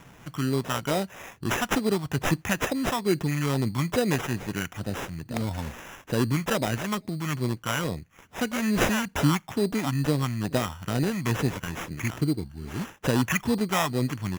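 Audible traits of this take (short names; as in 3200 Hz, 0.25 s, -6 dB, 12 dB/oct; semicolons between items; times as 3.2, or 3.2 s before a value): phasing stages 2, 2.3 Hz, lowest notch 420–1100 Hz; aliases and images of a low sample rate 4400 Hz, jitter 0%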